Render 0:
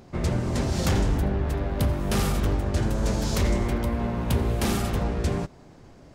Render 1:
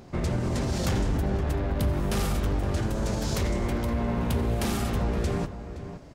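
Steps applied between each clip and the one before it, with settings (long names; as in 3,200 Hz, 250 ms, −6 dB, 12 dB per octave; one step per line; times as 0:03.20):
brickwall limiter −21 dBFS, peak gain reduction 6 dB
slap from a distant wall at 89 metres, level −11 dB
level +1.5 dB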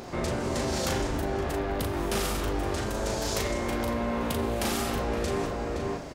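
bass and treble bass −10 dB, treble +1 dB
in parallel at −2 dB: compressor whose output falls as the input rises −39 dBFS, ratio −0.5
on the sum: double-tracking delay 38 ms −4.5 dB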